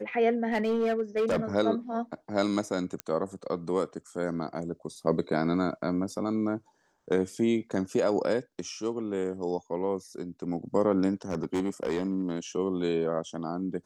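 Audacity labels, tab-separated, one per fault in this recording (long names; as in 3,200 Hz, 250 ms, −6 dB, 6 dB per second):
0.520000	1.400000	clipping −22.5 dBFS
3.000000	3.000000	click −16 dBFS
11.300000	12.390000	clipping −23.5 dBFS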